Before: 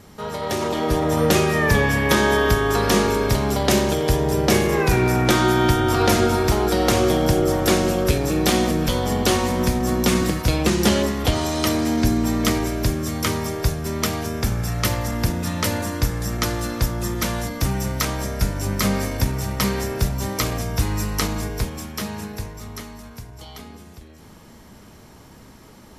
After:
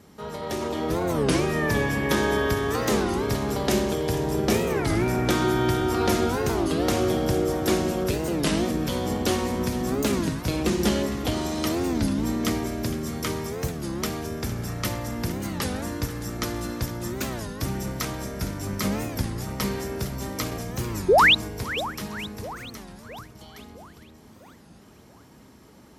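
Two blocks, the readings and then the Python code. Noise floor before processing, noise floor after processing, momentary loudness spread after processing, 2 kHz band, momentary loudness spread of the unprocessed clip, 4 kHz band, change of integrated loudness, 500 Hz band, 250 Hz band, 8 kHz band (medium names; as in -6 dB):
-46 dBFS, -51 dBFS, 9 LU, -3.5 dB, 9 LU, -4.0 dB, -4.5 dB, -4.0 dB, -4.0 dB, -6.5 dB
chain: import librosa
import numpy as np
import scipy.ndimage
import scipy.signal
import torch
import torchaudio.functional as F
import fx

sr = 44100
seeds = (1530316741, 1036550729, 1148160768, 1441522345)

p1 = fx.octave_divider(x, sr, octaves=2, level_db=-4.0)
p2 = scipy.signal.sosfilt(scipy.signal.butter(2, 73.0, 'highpass', fs=sr, output='sos'), p1)
p3 = fx.peak_eq(p2, sr, hz=300.0, db=3.5, octaves=1.2)
p4 = fx.spec_paint(p3, sr, seeds[0], shape='rise', start_s=21.1, length_s=0.25, low_hz=400.0, high_hz=4100.0, level_db=-8.0)
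p5 = p4 + fx.echo_split(p4, sr, split_hz=1300.0, low_ms=662, high_ms=459, feedback_pct=52, wet_db=-14, dry=0)
p6 = fx.record_warp(p5, sr, rpm=33.33, depth_cents=250.0)
y = p6 * 10.0 ** (-7.0 / 20.0)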